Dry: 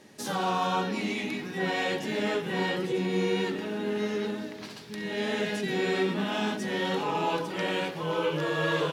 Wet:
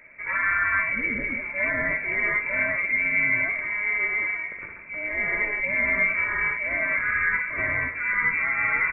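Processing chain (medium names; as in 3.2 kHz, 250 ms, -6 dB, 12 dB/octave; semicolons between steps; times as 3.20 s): band-stop 1.7 kHz, Q 5.5; frequency inversion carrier 2.5 kHz; trim +4.5 dB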